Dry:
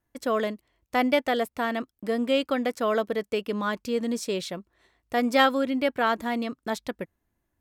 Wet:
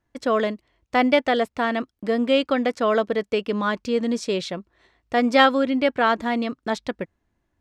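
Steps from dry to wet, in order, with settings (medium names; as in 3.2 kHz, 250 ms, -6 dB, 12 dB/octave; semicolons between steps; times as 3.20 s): low-pass 5.9 kHz 12 dB/octave; trim +4.5 dB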